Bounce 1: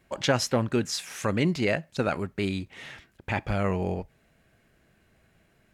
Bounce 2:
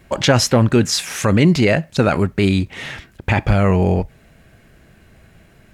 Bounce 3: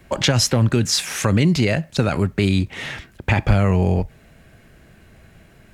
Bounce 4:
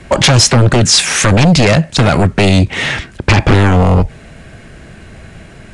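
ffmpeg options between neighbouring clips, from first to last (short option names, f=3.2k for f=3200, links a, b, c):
-filter_complex "[0:a]asplit=2[a][b];[b]alimiter=limit=-22dB:level=0:latency=1:release=17,volume=3dB[c];[a][c]amix=inputs=2:normalize=0,lowshelf=f=160:g=6,volume=5dB"
-filter_complex "[0:a]acrossover=split=160|3000[a][b][c];[b]acompressor=threshold=-18dB:ratio=6[d];[a][d][c]amix=inputs=3:normalize=0"
-af "aeval=exprs='0.891*sin(PI/2*4.47*val(0)/0.891)':c=same,aresample=22050,aresample=44100,volume=-3dB"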